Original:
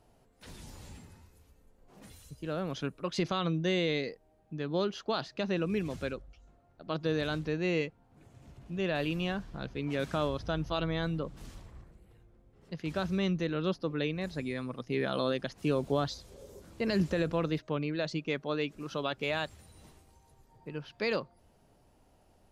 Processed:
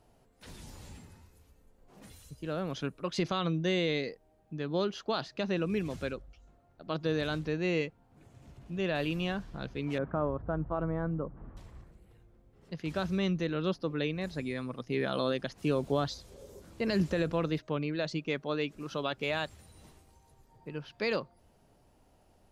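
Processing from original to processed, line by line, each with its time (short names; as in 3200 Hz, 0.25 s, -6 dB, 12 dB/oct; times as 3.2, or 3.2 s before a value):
9.98–11.57 LPF 1400 Hz 24 dB/oct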